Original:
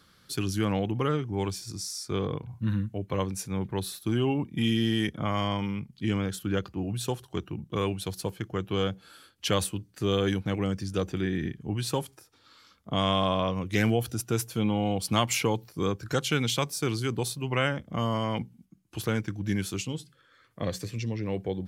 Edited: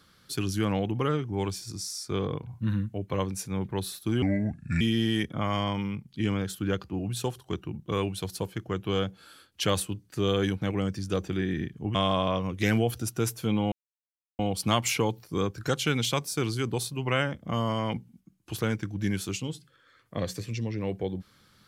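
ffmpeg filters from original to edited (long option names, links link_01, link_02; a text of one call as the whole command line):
ffmpeg -i in.wav -filter_complex "[0:a]asplit=5[link_01][link_02][link_03][link_04][link_05];[link_01]atrim=end=4.224[link_06];[link_02]atrim=start=4.22:end=4.65,asetpts=PTS-STARTPTS,asetrate=32193,aresample=44100[link_07];[link_03]atrim=start=4.646:end=11.792[link_08];[link_04]atrim=start=13.068:end=14.84,asetpts=PTS-STARTPTS,afade=type=out:start_time=1.768:duration=0.004:curve=hsin,apad=pad_dur=0.67[link_09];[link_05]atrim=start=14.84,asetpts=PTS-STARTPTS,afade=type=in:duration=0.004:curve=hsin[link_10];[link_06][link_07]acrossfade=duration=0.004:curve1=hsin:curve2=hsin[link_11];[link_11][link_08]acrossfade=duration=0.004:curve1=hsin:curve2=hsin[link_12];[link_09][link_10]concat=n=2:v=0:a=1[link_13];[link_12][link_13]acrossfade=duration=0.004:curve1=hsin:curve2=hsin" out.wav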